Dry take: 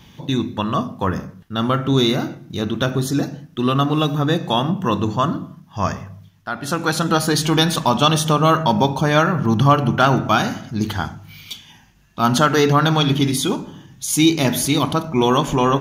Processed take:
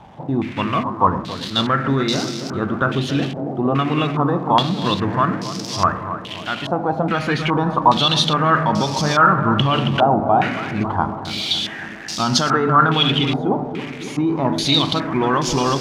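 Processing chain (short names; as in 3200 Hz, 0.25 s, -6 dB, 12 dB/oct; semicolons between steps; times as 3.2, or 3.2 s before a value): switching spikes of -16.5 dBFS; limiter -9.5 dBFS, peak gain reduction 7 dB; tape echo 0.277 s, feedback 87%, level -7 dB, low-pass 1100 Hz; stepped low-pass 2.4 Hz 770–5200 Hz; gain -1 dB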